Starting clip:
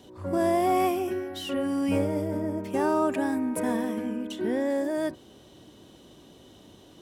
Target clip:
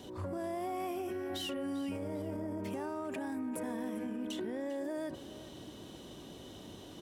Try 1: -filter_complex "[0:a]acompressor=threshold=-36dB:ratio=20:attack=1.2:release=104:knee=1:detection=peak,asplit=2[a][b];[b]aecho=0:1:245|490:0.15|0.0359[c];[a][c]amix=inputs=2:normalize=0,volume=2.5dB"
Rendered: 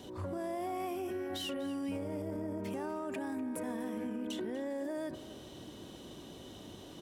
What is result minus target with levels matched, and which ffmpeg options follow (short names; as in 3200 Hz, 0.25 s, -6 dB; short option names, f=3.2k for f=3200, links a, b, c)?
echo 0.151 s early
-filter_complex "[0:a]acompressor=threshold=-36dB:ratio=20:attack=1.2:release=104:knee=1:detection=peak,asplit=2[a][b];[b]aecho=0:1:396|792:0.15|0.0359[c];[a][c]amix=inputs=2:normalize=0,volume=2.5dB"